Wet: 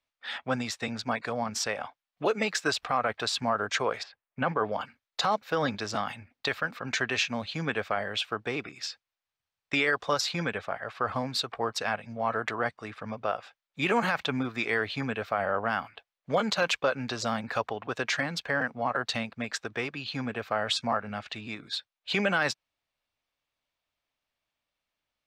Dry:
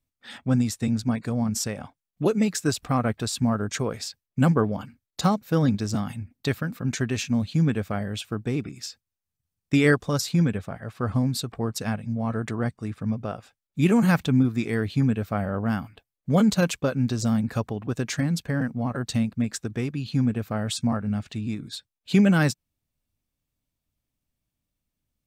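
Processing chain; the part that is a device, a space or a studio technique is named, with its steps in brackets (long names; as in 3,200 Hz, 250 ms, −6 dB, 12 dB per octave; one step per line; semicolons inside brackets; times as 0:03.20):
0:04.02–0:04.54: low-pass filter 1,600 Hz → 3,000 Hz 12 dB per octave
DJ mixer with the lows and highs turned down (three-way crossover with the lows and the highs turned down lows −22 dB, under 520 Hz, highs −20 dB, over 4,800 Hz; brickwall limiter −22.5 dBFS, peak gain reduction 11 dB)
level +7 dB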